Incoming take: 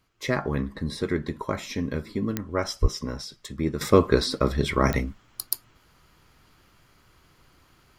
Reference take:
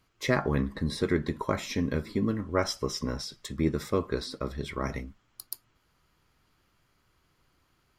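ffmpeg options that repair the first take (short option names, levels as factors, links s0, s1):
-filter_complex "[0:a]adeclick=t=4,asplit=3[s0][s1][s2];[s0]afade=t=out:st=2.81:d=0.02[s3];[s1]highpass=f=140:w=0.5412,highpass=f=140:w=1.3066,afade=t=in:st=2.81:d=0.02,afade=t=out:st=2.93:d=0.02[s4];[s2]afade=t=in:st=2.93:d=0.02[s5];[s3][s4][s5]amix=inputs=3:normalize=0,asetnsamples=n=441:p=0,asendcmd='3.81 volume volume -10.5dB',volume=1"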